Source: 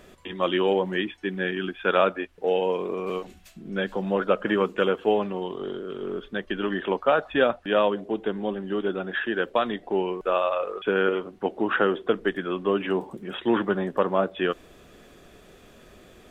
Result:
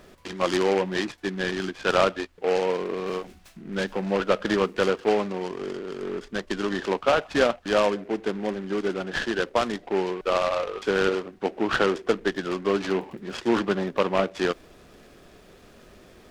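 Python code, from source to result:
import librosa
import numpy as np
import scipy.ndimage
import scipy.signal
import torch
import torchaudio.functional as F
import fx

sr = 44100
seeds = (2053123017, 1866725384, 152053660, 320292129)

y = fx.noise_mod_delay(x, sr, seeds[0], noise_hz=1500.0, depth_ms=0.055)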